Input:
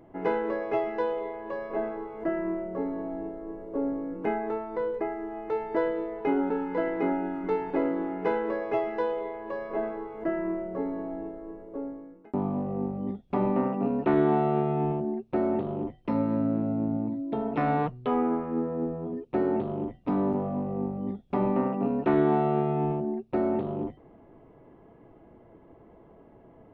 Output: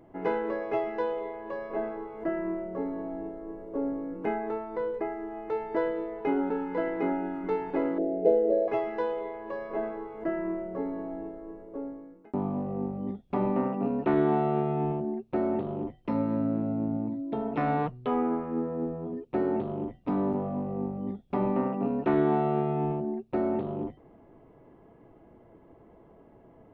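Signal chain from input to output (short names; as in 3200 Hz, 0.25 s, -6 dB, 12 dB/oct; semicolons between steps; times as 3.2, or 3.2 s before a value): 7.98–8.68 EQ curve 220 Hz 0 dB, 680 Hz +11 dB, 990 Hz -26 dB, 4100 Hz -9 dB; gain -1.5 dB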